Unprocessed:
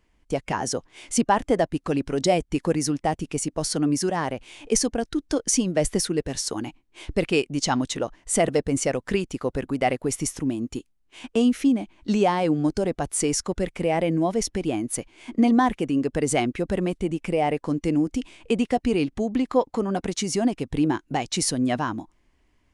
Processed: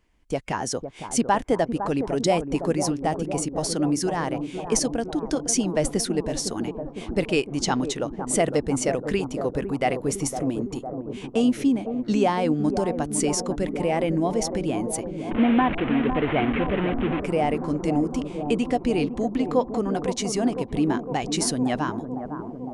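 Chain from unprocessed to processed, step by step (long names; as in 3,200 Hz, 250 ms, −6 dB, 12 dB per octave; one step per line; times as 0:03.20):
0:15.31–0:17.20: linear delta modulator 16 kbit/s, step −21.5 dBFS
bucket-brigade delay 507 ms, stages 4,096, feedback 72%, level −8.5 dB
level −1 dB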